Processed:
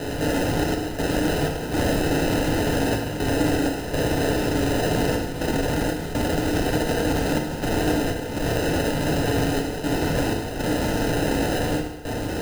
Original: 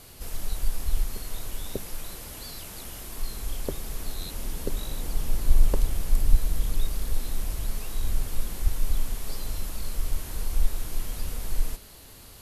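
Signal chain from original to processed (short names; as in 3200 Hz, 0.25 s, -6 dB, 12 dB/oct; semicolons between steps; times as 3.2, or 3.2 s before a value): one diode to ground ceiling -14.5 dBFS; pre-emphasis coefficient 0.97; step gate "xxx.xx.xx" 61 bpm -12 dB; high shelf 6300 Hz +11 dB; in parallel at -5 dB: Schmitt trigger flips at -42.5 dBFS; on the sum: sample-and-hold 39×; FDN reverb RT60 0.93 s, low-frequency decay 0.85×, high-frequency decay 0.95×, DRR 0.5 dB; gain +5.5 dB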